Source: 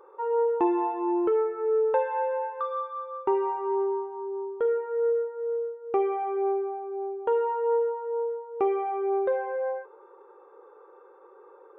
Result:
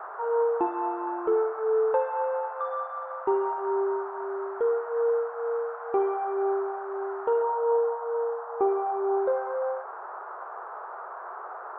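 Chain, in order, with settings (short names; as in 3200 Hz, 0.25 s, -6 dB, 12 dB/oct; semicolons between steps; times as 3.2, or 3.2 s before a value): band noise 630–1500 Hz -39 dBFS; resonant high shelf 1600 Hz -6.5 dB, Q 1.5, from 7.42 s -14 dB, from 9.18 s -8.5 dB; notches 50/100/150/200/250/300/350 Hz; dynamic EQ 1100 Hz, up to -3 dB, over -37 dBFS, Q 1.2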